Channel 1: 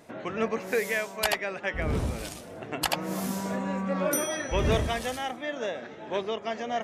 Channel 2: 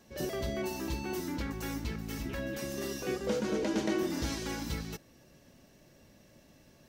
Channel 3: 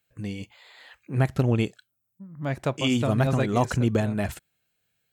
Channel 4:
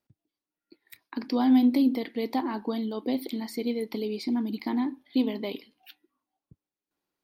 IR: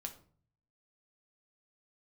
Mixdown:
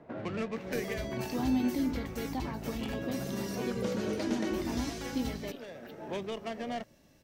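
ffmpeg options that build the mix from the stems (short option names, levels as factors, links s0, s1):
-filter_complex "[0:a]adynamicsmooth=sensitivity=4.5:basefreq=1300,acrossover=split=250|690|2000[s0][s1][s2][s3];[s0]acompressor=threshold=0.0141:ratio=4[s4];[s1]acompressor=threshold=0.00794:ratio=4[s5];[s2]acompressor=threshold=0.00316:ratio=4[s6];[s3]acompressor=threshold=0.00501:ratio=4[s7];[s4][s5][s6][s7]amix=inputs=4:normalize=0,volume=0.944,asplit=2[s8][s9];[s9]volume=0.422[s10];[1:a]adelay=550,volume=0.708[s11];[2:a]acompressor=threshold=0.0447:ratio=6,lowpass=5000,volume=0.224[s12];[3:a]volume=0.355,asplit=2[s13][s14];[s14]apad=whole_len=301553[s15];[s8][s15]sidechaincompress=threshold=0.00251:ratio=8:attack=7.6:release=493[s16];[4:a]atrim=start_sample=2205[s17];[s10][s17]afir=irnorm=-1:irlink=0[s18];[s16][s11][s12][s13][s18]amix=inputs=5:normalize=0"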